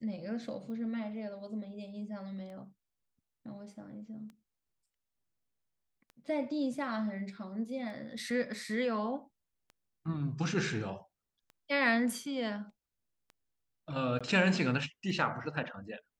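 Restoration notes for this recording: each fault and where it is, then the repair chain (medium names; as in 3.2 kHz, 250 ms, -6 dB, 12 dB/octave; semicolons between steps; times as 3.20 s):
tick 33 1/3 rpm -37 dBFS
14.19–14.21 s: dropout 16 ms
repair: de-click; interpolate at 14.19 s, 16 ms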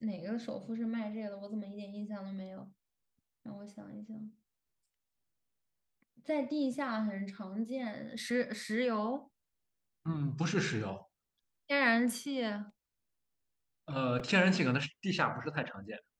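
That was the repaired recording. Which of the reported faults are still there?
nothing left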